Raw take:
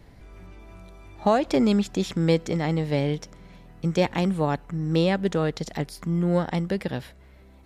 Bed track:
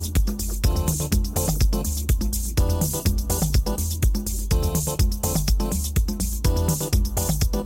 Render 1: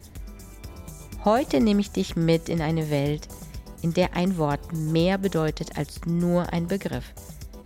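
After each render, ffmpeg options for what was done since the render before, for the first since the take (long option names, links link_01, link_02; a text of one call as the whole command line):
ffmpeg -i in.wav -i bed.wav -filter_complex "[1:a]volume=-19dB[link_01];[0:a][link_01]amix=inputs=2:normalize=0" out.wav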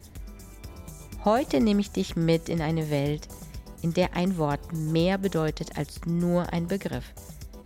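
ffmpeg -i in.wav -af "volume=-2dB" out.wav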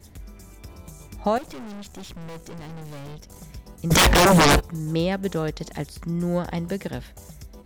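ffmpeg -i in.wav -filter_complex "[0:a]asettb=1/sr,asplit=3[link_01][link_02][link_03];[link_01]atrim=end=1.384[link_04];[link_02]atrim=start=1.38:end=3.36,asetpts=PTS-STARTPTS,afade=type=in:duration=0.004:curve=qsin,afade=type=out:start_time=1.976:duration=0.004:curve=qsin,aeval=exprs='(tanh(63.1*val(0)+0.6)-tanh(0.6))/63.1':channel_layout=same[link_05];[link_03]atrim=start=3.356[link_06];[link_04][link_05]acrossfade=duration=0.004:curve1=hsin:curve2=qsin[link_07];[link_07][link_06]acrossfade=duration=0.004:curve1=qsin:curve2=hsin,asplit=3[link_08][link_09][link_10];[link_08]afade=type=out:start_time=3.9:duration=0.02[link_11];[link_09]aeval=exprs='0.266*sin(PI/2*10*val(0)/0.266)':channel_layout=same,afade=type=in:start_time=3.9:duration=0.02,afade=type=out:start_time=4.59:duration=0.02[link_12];[link_10]afade=type=in:start_time=4.59:duration=0.02[link_13];[link_11][link_12][link_13]amix=inputs=3:normalize=0" out.wav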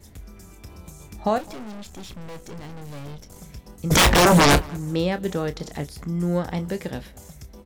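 ffmpeg -i in.wav -filter_complex "[0:a]asplit=2[link_01][link_02];[link_02]adelay=28,volume=-11.5dB[link_03];[link_01][link_03]amix=inputs=2:normalize=0,asplit=2[link_04][link_05];[link_05]adelay=209,lowpass=frequency=2100:poles=1,volume=-23dB,asplit=2[link_06][link_07];[link_07]adelay=209,lowpass=frequency=2100:poles=1,volume=0.26[link_08];[link_04][link_06][link_08]amix=inputs=3:normalize=0" out.wav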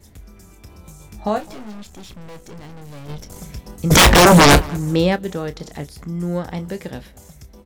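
ffmpeg -i in.wav -filter_complex "[0:a]asettb=1/sr,asplit=3[link_01][link_02][link_03];[link_01]atrim=end=0.824[link_04];[link_02]atrim=start=0.82:end=1.83,asetpts=PTS-STARTPTS,afade=type=in:duration=0.004:curve=qsin,afade=type=out:start_time=1.006:duration=0.004:curve=qsin,asplit=2[link_05][link_06];[link_06]adelay=19,volume=-6.5dB[link_07];[link_05][link_07]amix=inputs=2:normalize=0,atrim=end_sample=44541[link_08];[link_03]atrim=start=1.826[link_09];[link_04][link_08]acrossfade=duration=0.004:curve1=hsin:curve2=qsin[link_10];[link_10][link_09]acrossfade=duration=0.004:curve1=qsin:curve2=hsin,asplit=3[link_11][link_12][link_13];[link_11]afade=type=out:start_time=3.08:duration=0.02[link_14];[link_12]acontrast=81,afade=type=in:start_time=3.08:duration=0.02,afade=type=out:start_time=5.15:duration=0.02[link_15];[link_13]afade=type=in:start_time=5.15:duration=0.02[link_16];[link_14][link_15][link_16]amix=inputs=3:normalize=0" out.wav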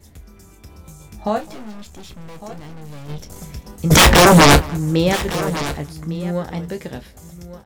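ffmpeg -i in.wav -filter_complex "[0:a]asplit=2[link_01][link_02];[link_02]adelay=13,volume=-11.5dB[link_03];[link_01][link_03]amix=inputs=2:normalize=0,aecho=1:1:1156:0.178" out.wav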